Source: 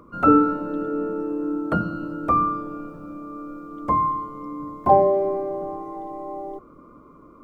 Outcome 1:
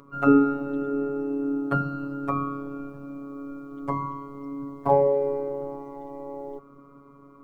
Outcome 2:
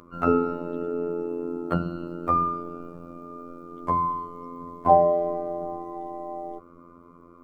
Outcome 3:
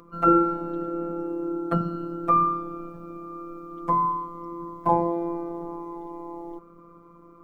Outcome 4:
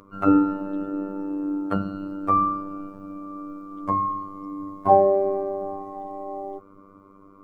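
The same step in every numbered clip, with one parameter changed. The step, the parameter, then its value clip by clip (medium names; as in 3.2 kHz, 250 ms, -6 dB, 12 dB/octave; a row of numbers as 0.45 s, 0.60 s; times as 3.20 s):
robot voice, frequency: 140 Hz, 86 Hz, 170 Hz, 98 Hz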